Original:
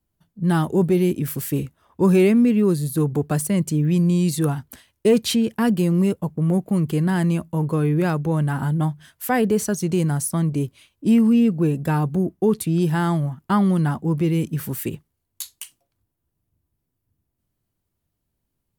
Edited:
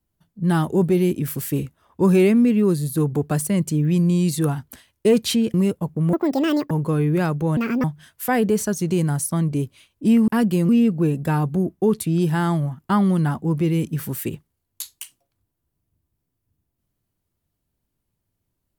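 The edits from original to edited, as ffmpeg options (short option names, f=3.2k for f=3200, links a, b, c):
-filter_complex "[0:a]asplit=8[a][b][c][d][e][f][g][h];[a]atrim=end=5.542[i];[b]atrim=start=5.948:end=6.544[j];[c]atrim=start=6.54:end=7.55,asetpts=PTS-STARTPTS,asetrate=77175,aresample=44100[k];[d]atrim=start=7.546:end=8.414[l];[e]atrim=start=8.41:end=8.85,asetpts=PTS-STARTPTS,asetrate=71442,aresample=44100[m];[f]atrim=start=8.846:end=11.292[n];[g]atrim=start=5.538:end=5.952[o];[h]atrim=start=11.288[p];[i][j]acrossfade=d=0.004:c1=hsin:c2=hsin[q];[q][k]acrossfade=d=0.004:c1=hsin:c2=hsin[r];[r][l]acrossfade=d=0.004:c1=hsin:c2=hsin[s];[s][m]acrossfade=d=0.004:c1=hsin:c2=hsin[t];[t][n]acrossfade=d=0.004:c1=hsin:c2=hsin[u];[u][o]acrossfade=d=0.004:c1=hsin:c2=hsin[v];[v][p]acrossfade=d=0.004:c1=hsin:c2=hsin"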